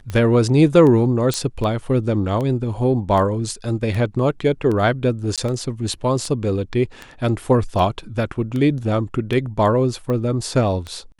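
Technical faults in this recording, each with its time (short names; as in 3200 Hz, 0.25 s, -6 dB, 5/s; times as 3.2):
tick 78 rpm -15 dBFS
1.34 pop -7 dBFS
5.36–5.38 gap 17 ms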